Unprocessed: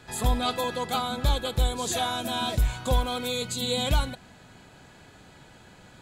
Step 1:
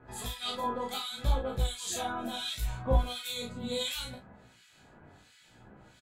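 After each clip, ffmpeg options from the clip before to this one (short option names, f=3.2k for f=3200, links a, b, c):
-filter_complex "[0:a]acrossover=split=1700[a][b];[a]aeval=exprs='val(0)*(1-1/2+1/2*cos(2*PI*1.4*n/s))':c=same[c];[b]aeval=exprs='val(0)*(1-1/2-1/2*cos(2*PI*1.4*n/s))':c=same[d];[c][d]amix=inputs=2:normalize=0,asplit=2[e][f];[f]aecho=0:1:34|62:0.668|0.188[g];[e][g]amix=inputs=2:normalize=0,flanger=delay=15:depth=6.1:speed=0.69"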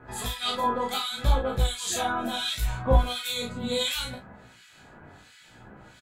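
-af "equalizer=f=1.5k:w=0.99:g=3.5,volume=5.5dB"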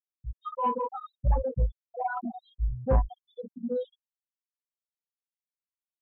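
-af "afftfilt=real='re*gte(hypot(re,im),0.178)':imag='im*gte(hypot(re,im),0.178)':win_size=1024:overlap=0.75,lowpass=f=1.6k:w=0.5412,lowpass=f=1.6k:w=1.3066,asoftclip=type=tanh:threshold=-15dB"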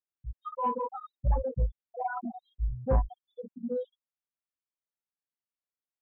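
-af "lowpass=2.3k,volume=-2dB"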